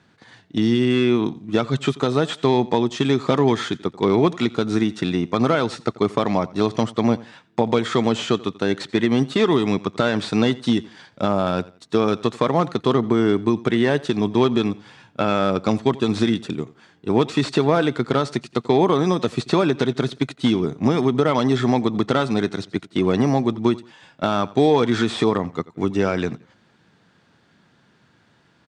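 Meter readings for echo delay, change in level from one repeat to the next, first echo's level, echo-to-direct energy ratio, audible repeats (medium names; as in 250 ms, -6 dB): 87 ms, -10.5 dB, -20.5 dB, -20.0 dB, 2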